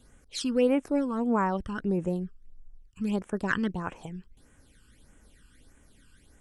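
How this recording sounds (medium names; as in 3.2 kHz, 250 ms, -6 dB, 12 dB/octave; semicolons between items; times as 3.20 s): phasing stages 12, 1.6 Hz, lowest notch 640–4400 Hz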